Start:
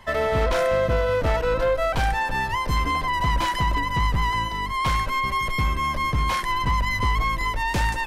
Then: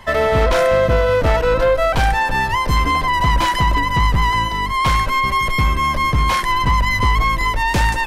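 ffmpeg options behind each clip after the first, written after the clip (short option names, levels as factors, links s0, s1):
-af "acontrast=81"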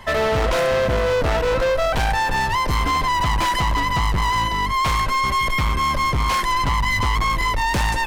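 -af "volume=7.08,asoftclip=hard,volume=0.141"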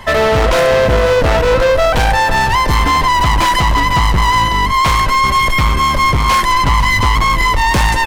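-af "aecho=1:1:500:0.211,volume=2.37"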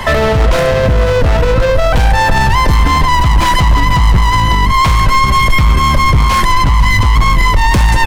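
-filter_complex "[0:a]acrossover=split=200[s0][s1];[s1]acompressor=threshold=0.1:ratio=5[s2];[s0][s2]amix=inputs=2:normalize=0,alimiter=level_in=4.47:limit=0.891:release=50:level=0:latency=1,volume=0.891"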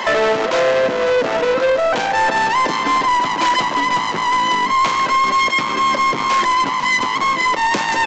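-af "highpass=f=260:w=0.5412,highpass=f=260:w=1.3066,aresample=16000,asoftclip=type=tanh:threshold=0.299,aresample=44100"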